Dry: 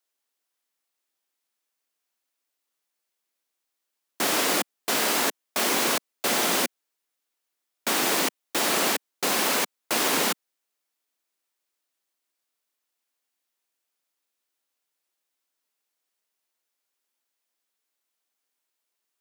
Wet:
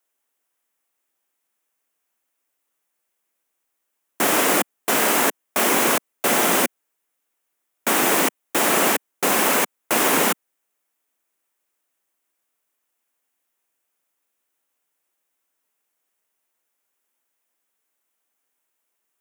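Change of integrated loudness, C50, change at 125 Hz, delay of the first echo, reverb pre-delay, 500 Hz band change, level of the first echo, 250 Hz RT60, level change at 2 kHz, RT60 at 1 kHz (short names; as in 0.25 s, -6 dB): +5.0 dB, none, +6.5 dB, none, none, +6.5 dB, none, none, +5.0 dB, none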